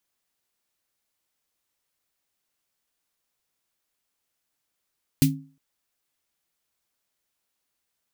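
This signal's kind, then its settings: snare drum length 0.36 s, tones 150 Hz, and 270 Hz, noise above 2.3 kHz, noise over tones -5.5 dB, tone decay 0.39 s, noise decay 0.15 s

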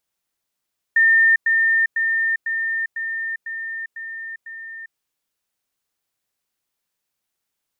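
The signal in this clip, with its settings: level ladder 1.81 kHz -11 dBFS, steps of -3 dB, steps 8, 0.40 s 0.10 s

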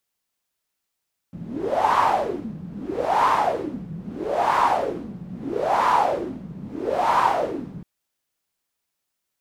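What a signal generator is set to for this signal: wind-like swept noise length 6.50 s, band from 170 Hz, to 1 kHz, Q 6.4, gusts 5, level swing 17 dB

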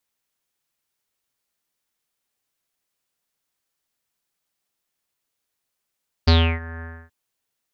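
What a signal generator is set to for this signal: synth note square E2 24 dB/octave, low-pass 1.7 kHz, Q 8.5, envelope 1.5 oct, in 0.34 s, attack 12 ms, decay 0.31 s, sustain -21.5 dB, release 0.28 s, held 0.55 s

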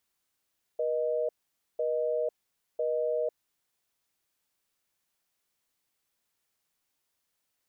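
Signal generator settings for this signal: call progress tone busy tone, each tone -29 dBFS 2.98 s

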